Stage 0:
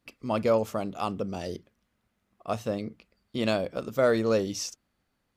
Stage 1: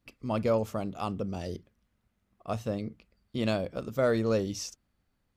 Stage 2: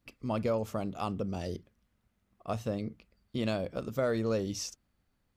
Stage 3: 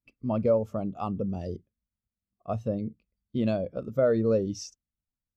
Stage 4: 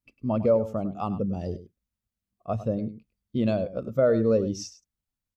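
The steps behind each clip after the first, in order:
bass shelf 140 Hz +10.5 dB; trim -4 dB
compression 2:1, threshold -29 dBFS, peak gain reduction 4.5 dB
spectral contrast expander 1.5:1; trim +5.5 dB
delay 102 ms -14 dB; trim +2 dB

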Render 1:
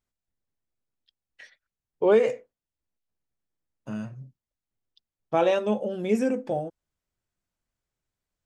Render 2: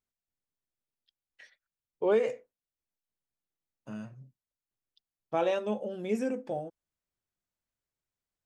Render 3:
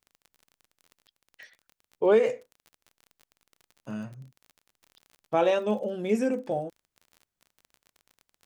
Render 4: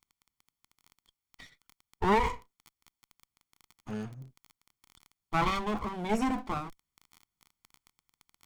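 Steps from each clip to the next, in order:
bass shelf 120 Hz -5 dB; trim -6 dB
crackle 30 per s -45 dBFS; trim +5 dB
comb filter that takes the minimum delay 0.91 ms

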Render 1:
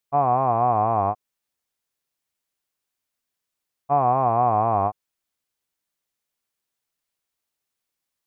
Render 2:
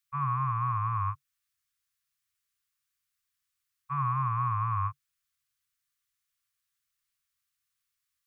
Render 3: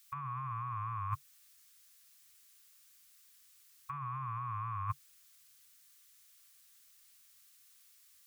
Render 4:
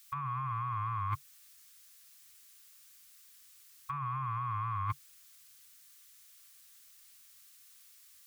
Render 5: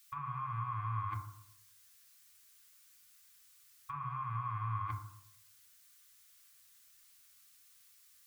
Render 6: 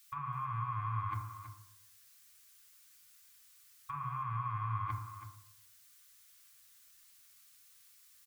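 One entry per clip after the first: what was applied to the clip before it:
Chebyshev band-stop 140–1100 Hz, order 5
treble shelf 2.5 kHz +10.5 dB; peak limiter -28.5 dBFS, peak gain reduction 9 dB; compressor with a negative ratio -40 dBFS, ratio -0.5; trim +3.5 dB
saturation -30 dBFS, distortion -19 dB; trim +4.5 dB
FDN reverb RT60 0.72 s, low-frequency decay 1.1×, high-frequency decay 0.25×, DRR 2.5 dB; trim -5 dB
delay 326 ms -11.5 dB; trim +1 dB

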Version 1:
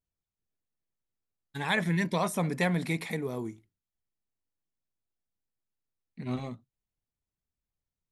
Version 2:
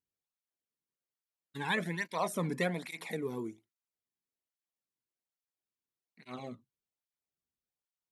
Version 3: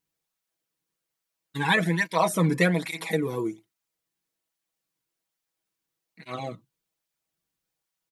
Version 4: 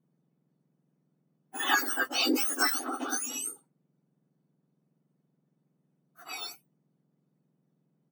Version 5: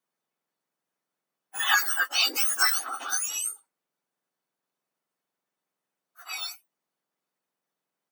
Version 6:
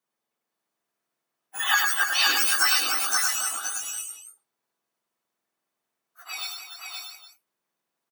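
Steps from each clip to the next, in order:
cancelling through-zero flanger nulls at 1.2 Hz, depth 1.7 ms; trim -1.5 dB
comb 6.2 ms; trim +8.5 dB
spectrum inverted on a logarithmic axis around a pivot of 1.7 kHz
high-pass 1.1 kHz 12 dB/octave; trim +5 dB
multi-tap echo 102/292/523/632/810 ms -4.5/-8.5/-4/-7.5/-15.5 dB

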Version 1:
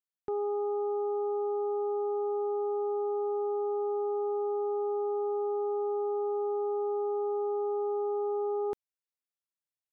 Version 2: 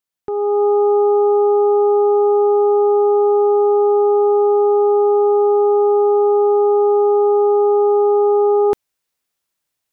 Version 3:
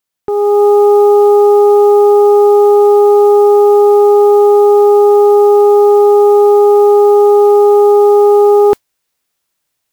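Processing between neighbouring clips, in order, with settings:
level rider gain up to 9 dB; trim +8.5 dB
modulation noise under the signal 33 dB; trim +7 dB

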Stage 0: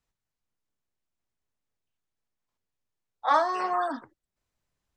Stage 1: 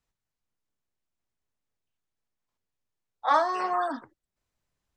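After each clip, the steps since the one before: no audible change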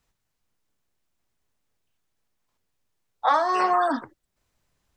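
compression 6:1, threshold -26 dBFS, peak gain reduction 9.5 dB; trim +9 dB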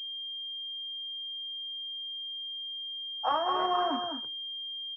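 delay 208 ms -6.5 dB; class-D stage that switches slowly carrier 3.2 kHz; trim -7 dB

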